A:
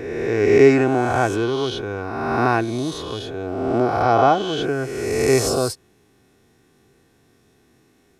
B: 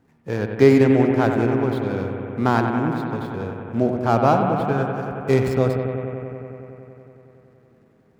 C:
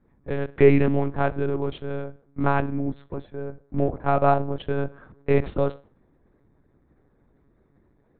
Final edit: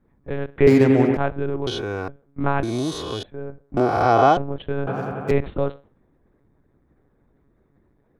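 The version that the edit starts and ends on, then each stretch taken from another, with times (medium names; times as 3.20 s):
C
0.67–1.17 s: from B
1.67–2.08 s: from A
2.63–3.23 s: from A
3.77–4.37 s: from A
4.87–5.31 s: from B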